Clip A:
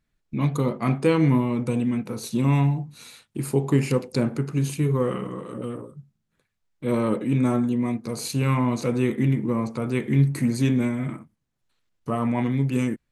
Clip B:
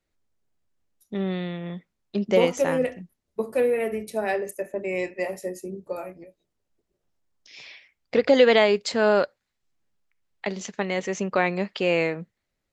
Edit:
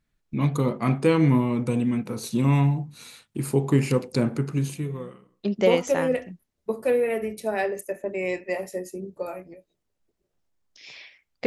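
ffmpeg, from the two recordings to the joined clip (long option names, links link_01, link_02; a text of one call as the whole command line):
ffmpeg -i cue0.wav -i cue1.wav -filter_complex "[0:a]apad=whole_dur=11.46,atrim=end=11.46,atrim=end=5.46,asetpts=PTS-STARTPTS[link_01];[1:a]atrim=start=1.22:end=8.16,asetpts=PTS-STARTPTS[link_02];[link_01][link_02]acrossfade=duration=0.94:curve1=qua:curve2=qua" out.wav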